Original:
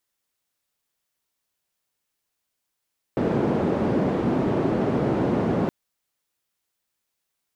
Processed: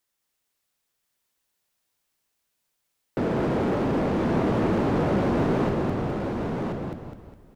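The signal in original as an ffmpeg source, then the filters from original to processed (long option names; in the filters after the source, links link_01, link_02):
-f lavfi -i "anoisesrc=color=white:duration=2.52:sample_rate=44100:seed=1,highpass=frequency=150,lowpass=frequency=350,volume=2.1dB"
-filter_complex "[0:a]asplit=2[link_01][link_02];[link_02]asplit=6[link_03][link_04][link_05][link_06][link_07][link_08];[link_03]adelay=205,afreqshift=-38,volume=-4.5dB[link_09];[link_04]adelay=410,afreqshift=-76,volume=-11.4dB[link_10];[link_05]adelay=615,afreqshift=-114,volume=-18.4dB[link_11];[link_06]adelay=820,afreqshift=-152,volume=-25.3dB[link_12];[link_07]adelay=1025,afreqshift=-190,volume=-32.2dB[link_13];[link_08]adelay=1230,afreqshift=-228,volume=-39.2dB[link_14];[link_09][link_10][link_11][link_12][link_13][link_14]amix=inputs=6:normalize=0[link_15];[link_01][link_15]amix=inputs=2:normalize=0,volume=21dB,asoftclip=hard,volume=-21dB,asplit=2[link_16][link_17];[link_17]aecho=0:1:1033:0.596[link_18];[link_16][link_18]amix=inputs=2:normalize=0"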